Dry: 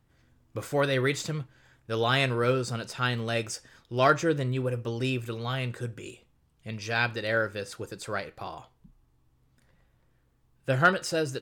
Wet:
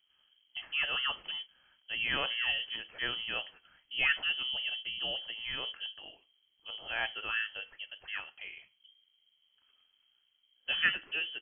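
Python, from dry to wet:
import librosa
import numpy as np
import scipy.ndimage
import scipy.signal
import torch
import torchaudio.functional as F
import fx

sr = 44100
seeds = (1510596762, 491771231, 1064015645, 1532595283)

y = fx.freq_invert(x, sr, carrier_hz=3200)
y = y * 10.0 ** (-7.5 / 20.0)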